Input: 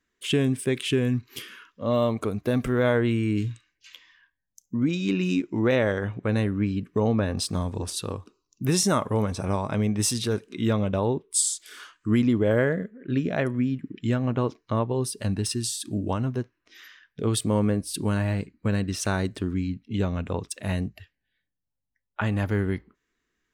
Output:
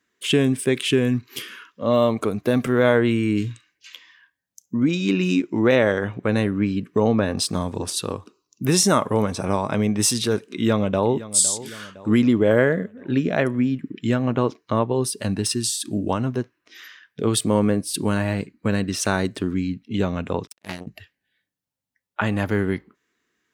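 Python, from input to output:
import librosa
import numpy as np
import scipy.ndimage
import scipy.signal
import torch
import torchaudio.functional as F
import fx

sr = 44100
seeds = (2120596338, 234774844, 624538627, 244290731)

y = fx.echo_throw(x, sr, start_s=10.47, length_s=0.82, ms=510, feedback_pct=55, wet_db=-16.0)
y = fx.power_curve(y, sr, exponent=3.0, at=(20.47, 20.87))
y = scipy.signal.sosfilt(scipy.signal.bessel(2, 150.0, 'highpass', norm='mag', fs=sr, output='sos'), y)
y = F.gain(torch.from_numpy(y), 5.5).numpy()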